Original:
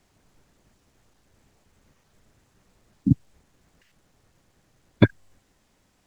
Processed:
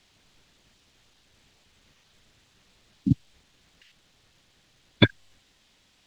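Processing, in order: peaking EQ 3.5 kHz +14.5 dB 1.7 oct; trim -3 dB

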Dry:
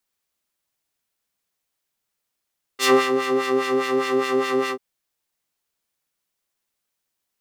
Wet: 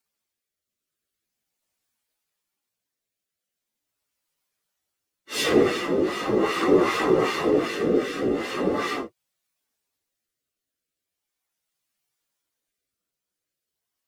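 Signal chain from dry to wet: whisper effect; rotary cabinet horn 0.75 Hz; plain phase-vocoder stretch 1.9×; trim +3 dB

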